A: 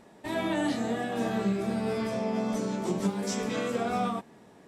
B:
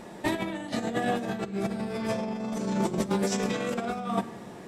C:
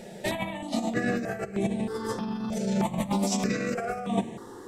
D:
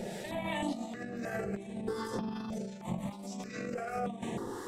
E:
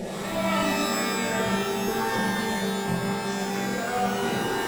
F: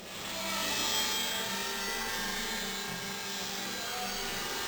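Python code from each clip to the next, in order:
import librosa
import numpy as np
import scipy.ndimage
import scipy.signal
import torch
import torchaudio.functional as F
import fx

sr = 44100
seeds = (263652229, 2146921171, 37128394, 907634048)

y1 = fx.over_compress(x, sr, threshold_db=-34.0, ratio=-0.5)
y1 = fx.room_shoebox(y1, sr, seeds[0], volume_m3=3300.0, walls='furnished', distance_m=0.87)
y1 = y1 * 10.0 ** (5.0 / 20.0)
y2 = fx.phaser_held(y1, sr, hz=3.2, low_hz=290.0, high_hz=4900.0)
y2 = y2 * 10.0 ** (3.5 / 20.0)
y3 = fx.over_compress(y2, sr, threshold_db=-36.0, ratio=-1.0)
y3 = fx.harmonic_tremolo(y3, sr, hz=2.7, depth_pct=50, crossover_hz=820.0)
y4 = fx.rev_shimmer(y3, sr, seeds[1], rt60_s=1.5, semitones=12, shimmer_db=-2, drr_db=-1.0)
y4 = y4 * 10.0 ** (5.5 / 20.0)
y5 = librosa.effects.preemphasis(y4, coef=0.9, zi=[0.0])
y5 = np.repeat(y5[::4], 4)[:len(y5)]
y5 = y5 * 10.0 ** (3.0 / 20.0)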